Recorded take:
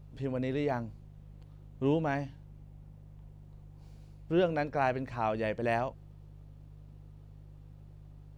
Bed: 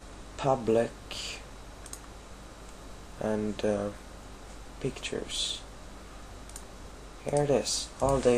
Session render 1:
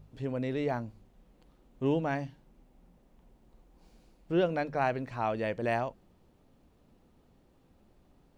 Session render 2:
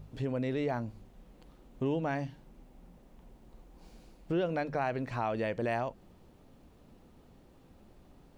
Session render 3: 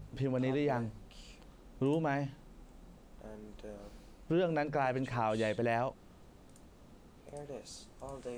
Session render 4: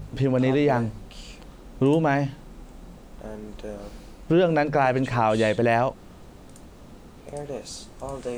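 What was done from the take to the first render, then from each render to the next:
de-hum 50 Hz, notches 4
in parallel at -1 dB: peak limiter -25.5 dBFS, peak gain reduction 9 dB; on the sum: compression 2:1, threshold -33 dBFS, peak gain reduction 7.5 dB
add bed -19.5 dB
trim +11.5 dB

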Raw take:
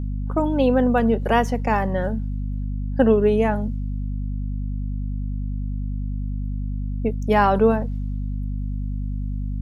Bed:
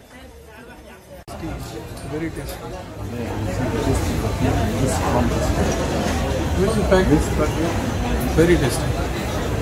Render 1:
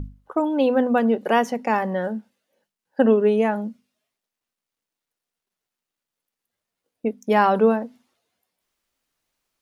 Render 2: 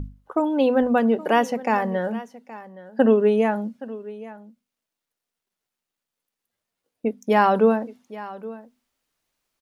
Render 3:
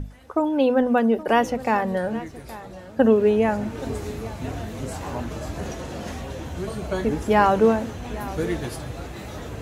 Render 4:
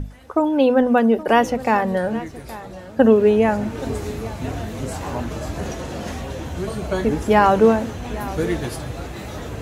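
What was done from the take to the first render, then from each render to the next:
hum notches 50/100/150/200/250 Hz
delay 821 ms -17.5 dB
add bed -11.5 dB
trim +3.5 dB; peak limiter -2 dBFS, peak gain reduction 2 dB

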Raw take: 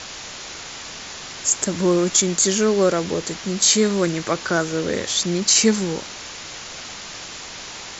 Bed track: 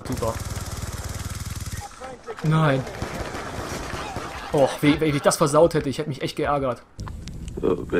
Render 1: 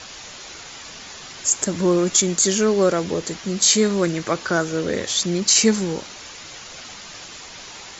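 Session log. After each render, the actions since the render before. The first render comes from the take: noise reduction 6 dB, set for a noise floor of -36 dBFS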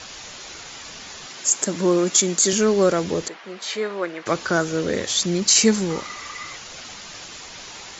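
1.27–2.53 s: high-pass 180 Hz; 3.28–4.26 s: band-pass 540–2300 Hz; 5.90–6.56 s: small resonant body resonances 1.2/2 kHz, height 16 dB, ringing for 30 ms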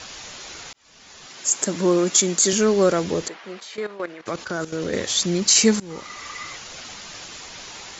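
0.73–1.65 s: fade in; 3.60–4.93 s: level held to a coarse grid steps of 13 dB; 5.80–6.45 s: fade in equal-power, from -21.5 dB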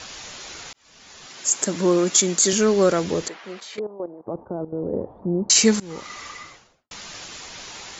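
3.79–5.50 s: Chebyshev low-pass 900 Hz, order 4; 6.14–6.91 s: studio fade out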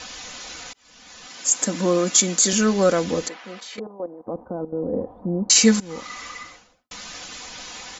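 band-stop 420 Hz, Q 12; comb 4 ms, depth 47%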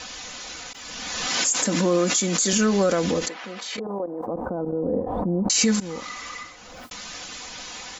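peak limiter -12.5 dBFS, peak gain reduction 9.5 dB; swell ahead of each attack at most 28 dB/s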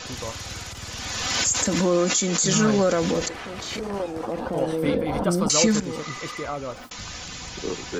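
add bed track -8.5 dB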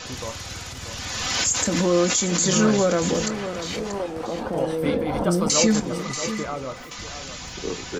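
doubling 23 ms -13 dB; delay 635 ms -10.5 dB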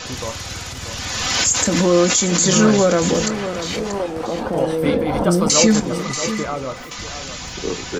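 trim +5 dB

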